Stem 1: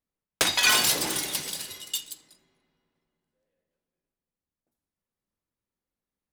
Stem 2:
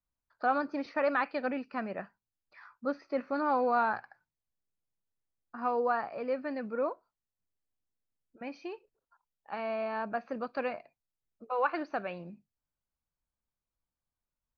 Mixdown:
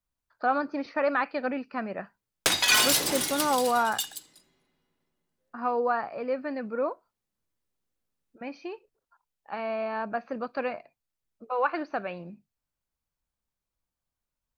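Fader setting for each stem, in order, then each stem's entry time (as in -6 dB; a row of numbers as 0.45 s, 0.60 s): -0.5 dB, +3.0 dB; 2.05 s, 0.00 s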